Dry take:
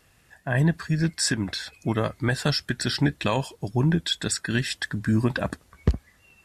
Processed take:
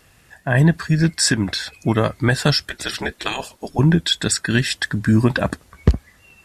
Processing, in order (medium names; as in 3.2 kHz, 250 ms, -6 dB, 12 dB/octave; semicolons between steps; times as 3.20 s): 2.69–3.79 s: spectral gate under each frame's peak -10 dB weak; trim +7 dB